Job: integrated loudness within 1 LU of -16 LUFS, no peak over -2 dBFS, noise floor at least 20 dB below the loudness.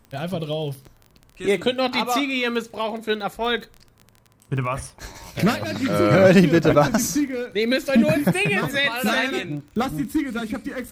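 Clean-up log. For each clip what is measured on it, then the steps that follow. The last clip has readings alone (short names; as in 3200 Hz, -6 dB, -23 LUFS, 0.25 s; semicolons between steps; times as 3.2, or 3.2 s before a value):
ticks 22/s; loudness -21.5 LUFS; peak -4.5 dBFS; loudness target -16.0 LUFS
-> de-click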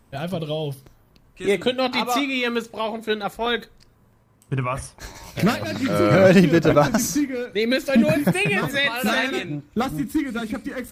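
ticks 0/s; loudness -21.5 LUFS; peak -4.5 dBFS; loudness target -16.0 LUFS
-> gain +5.5 dB; limiter -2 dBFS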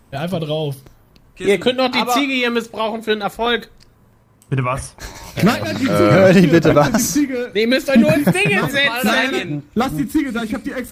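loudness -16.5 LUFS; peak -2.0 dBFS; noise floor -52 dBFS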